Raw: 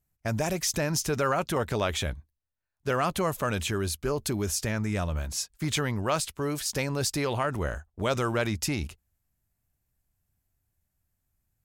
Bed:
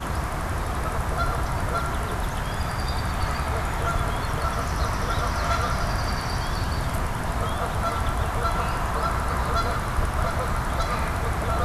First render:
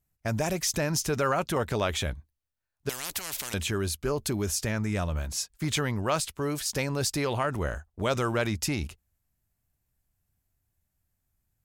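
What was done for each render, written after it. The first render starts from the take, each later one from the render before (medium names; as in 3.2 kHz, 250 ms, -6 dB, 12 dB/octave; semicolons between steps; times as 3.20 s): 2.89–3.54 s: spectrum-flattening compressor 10:1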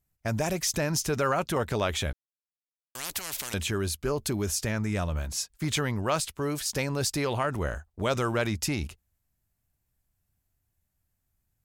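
2.13–2.95 s: mute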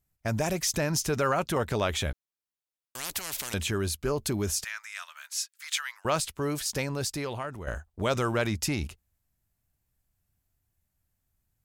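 4.64–6.05 s: inverse Chebyshev high-pass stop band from 290 Hz, stop band 70 dB; 6.59–7.67 s: fade out linear, to -11 dB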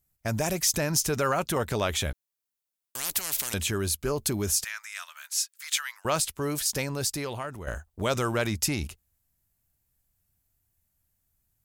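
treble shelf 6.8 kHz +8.5 dB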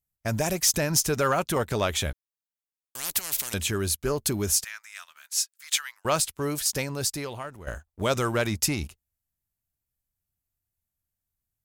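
waveshaping leveller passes 1; upward expansion 1.5:1, over -37 dBFS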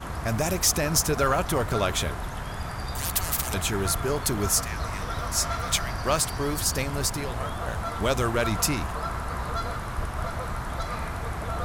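add bed -6 dB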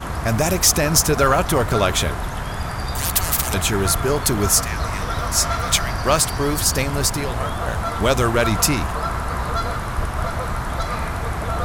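trim +7 dB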